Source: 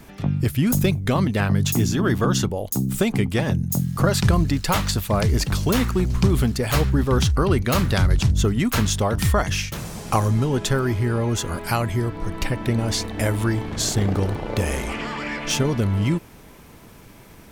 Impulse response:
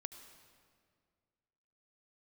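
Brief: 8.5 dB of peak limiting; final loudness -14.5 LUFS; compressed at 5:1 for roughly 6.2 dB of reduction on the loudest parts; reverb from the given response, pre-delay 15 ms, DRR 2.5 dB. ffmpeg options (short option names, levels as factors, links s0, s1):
-filter_complex "[0:a]acompressor=threshold=0.1:ratio=5,alimiter=limit=0.141:level=0:latency=1,asplit=2[s0][s1];[1:a]atrim=start_sample=2205,adelay=15[s2];[s1][s2]afir=irnorm=-1:irlink=0,volume=1.19[s3];[s0][s3]amix=inputs=2:normalize=0,volume=3.35"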